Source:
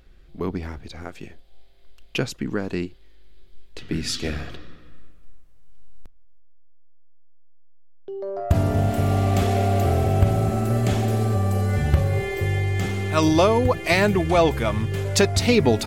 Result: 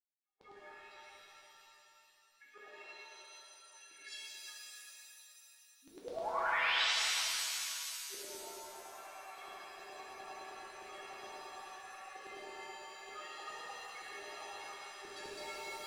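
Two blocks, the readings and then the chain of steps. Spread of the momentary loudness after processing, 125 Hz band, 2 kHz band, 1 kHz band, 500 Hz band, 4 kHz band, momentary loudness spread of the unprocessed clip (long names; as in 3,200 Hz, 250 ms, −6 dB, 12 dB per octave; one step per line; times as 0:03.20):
23 LU, below −40 dB, −10.0 dB, −15.0 dB, −25.5 dB, −7.5 dB, 14 LU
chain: adaptive Wiener filter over 9 samples
noise reduction from a noise print of the clip's start 16 dB
bass and treble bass −14 dB, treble −8 dB
downward compressor, threshold −26 dBFS, peak gain reduction 12 dB
brickwall limiter −25.5 dBFS, peak gain reduction 12 dB
gate pattern "..xxxxxxxx" 142 BPM −60 dB
stiff-string resonator 400 Hz, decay 0.31 s, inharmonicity 0.008
sound drawn into the spectrogram rise, 0:05.82–0:06.83, 250–4,100 Hz −42 dBFS
auto-filter high-pass saw down 9.7 Hz 530–4,400 Hz
reverb with rising layers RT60 2.8 s, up +7 semitones, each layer −2 dB, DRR −7 dB
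level −2.5 dB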